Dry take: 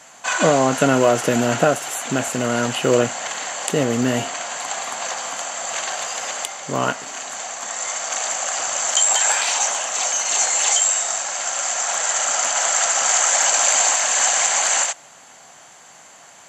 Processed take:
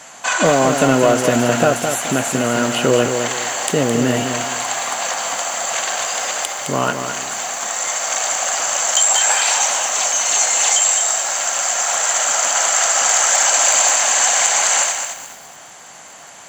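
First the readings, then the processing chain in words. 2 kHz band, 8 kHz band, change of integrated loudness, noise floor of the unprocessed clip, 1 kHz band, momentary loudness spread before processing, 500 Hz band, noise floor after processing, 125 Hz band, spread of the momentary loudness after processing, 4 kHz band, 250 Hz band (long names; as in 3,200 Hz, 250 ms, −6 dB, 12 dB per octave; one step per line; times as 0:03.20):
+3.5 dB, +3.5 dB, +3.0 dB, −46 dBFS, +3.5 dB, 11 LU, +2.5 dB, −39 dBFS, +3.0 dB, 9 LU, +3.5 dB, +3.0 dB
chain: in parallel at 0 dB: downward compressor 5 to 1, threshold −27 dBFS, peak gain reduction 14.5 dB
on the sum: gain into a clipping stage and back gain 5.5 dB
feedback echo at a low word length 213 ms, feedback 35%, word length 6 bits, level −6.5 dB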